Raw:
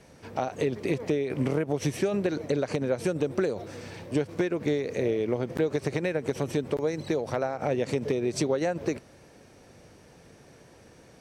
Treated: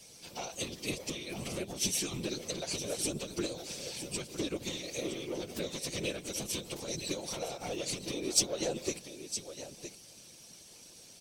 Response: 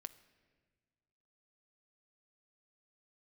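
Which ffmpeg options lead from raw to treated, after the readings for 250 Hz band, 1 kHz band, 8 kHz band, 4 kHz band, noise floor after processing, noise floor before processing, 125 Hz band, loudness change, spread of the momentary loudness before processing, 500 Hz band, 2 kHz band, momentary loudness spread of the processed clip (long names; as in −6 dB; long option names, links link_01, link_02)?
−10.0 dB, −10.0 dB, +10.0 dB, +7.0 dB, −54 dBFS, −54 dBFS, −11.5 dB, −7.0 dB, 4 LU, −11.5 dB, −6.0 dB, 16 LU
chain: -af "aecho=1:1:963:0.266,asoftclip=type=tanh:threshold=-19dB,afftfilt=real='hypot(re,im)*cos(PI*b)':imag='0':win_size=1024:overlap=0.75,aexciter=amount=7.1:drive=5.5:freq=2600,afftfilt=real='hypot(re,im)*cos(2*PI*random(0))':imag='hypot(re,im)*sin(2*PI*random(1))':win_size=512:overlap=0.75"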